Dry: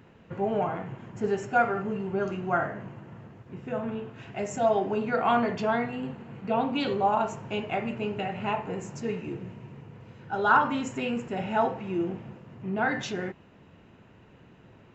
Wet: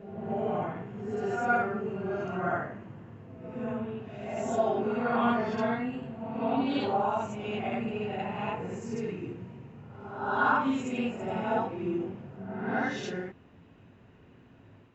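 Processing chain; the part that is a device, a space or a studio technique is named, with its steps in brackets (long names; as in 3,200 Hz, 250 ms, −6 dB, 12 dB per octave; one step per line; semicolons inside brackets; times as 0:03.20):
reverse reverb (reversed playback; convolution reverb RT60 0.95 s, pre-delay 47 ms, DRR −2 dB; reversed playback)
level −7.5 dB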